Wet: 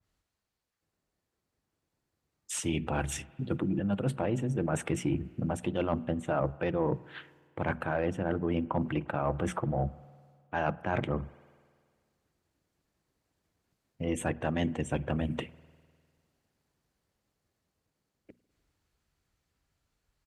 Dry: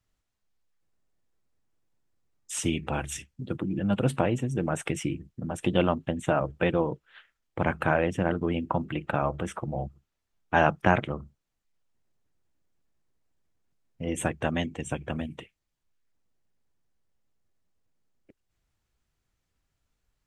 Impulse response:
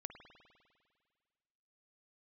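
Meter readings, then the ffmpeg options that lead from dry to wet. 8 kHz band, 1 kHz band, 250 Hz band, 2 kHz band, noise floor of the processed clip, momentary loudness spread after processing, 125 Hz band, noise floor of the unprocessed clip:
−3.0 dB, −5.5 dB, −2.5 dB, −7.0 dB, −84 dBFS, 6 LU, −2.0 dB, −81 dBFS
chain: -filter_complex "[0:a]dynaudnorm=framelen=340:gausssize=21:maxgain=11.5dB,aresample=32000,aresample=44100,areverse,acompressor=threshold=-26dB:ratio=12,areverse,highpass=41,equalizer=frequency=4400:width_type=o:width=0.24:gain=4,bandreject=frequency=60:width_type=h:width=6,bandreject=frequency=120:width_type=h:width=6,bandreject=frequency=180:width_type=h:width=6,bandreject=frequency=240:width_type=h:width=6,asoftclip=type=tanh:threshold=-18dB,asplit=2[link_01][link_02];[1:a]atrim=start_sample=2205,lowpass=3000[link_03];[link_02][link_03]afir=irnorm=-1:irlink=0,volume=-7.5dB[link_04];[link_01][link_04]amix=inputs=2:normalize=0,adynamicequalizer=threshold=0.00501:dfrequency=1800:dqfactor=0.7:tfrequency=1800:tqfactor=0.7:attack=5:release=100:ratio=0.375:range=2.5:mode=cutabove:tftype=highshelf"

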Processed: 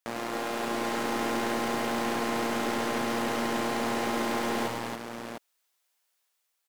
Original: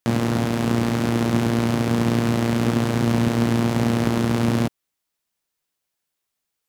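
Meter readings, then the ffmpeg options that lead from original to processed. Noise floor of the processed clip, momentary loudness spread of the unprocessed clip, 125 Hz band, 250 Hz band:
−77 dBFS, 2 LU, −23.0 dB, −12.0 dB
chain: -af "highpass=580,dynaudnorm=framelen=170:gausssize=7:maxgain=5dB,aeval=exprs='(tanh(10*val(0)+0.15)-tanh(0.15))/10':channel_layout=same,aecho=1:1:100|246|278|699:0.562|0.316|0.631|0.447,volume=-3dB"

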